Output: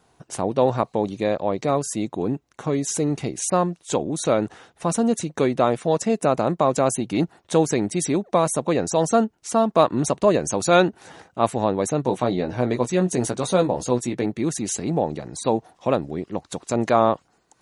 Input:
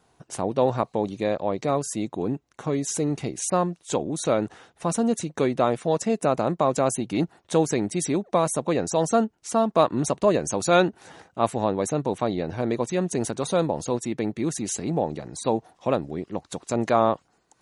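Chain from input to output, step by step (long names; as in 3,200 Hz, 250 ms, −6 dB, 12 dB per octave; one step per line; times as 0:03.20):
0:12.03–0:14.26: double-tracking delay 16 ms −6.5 dB
level +2.5 dB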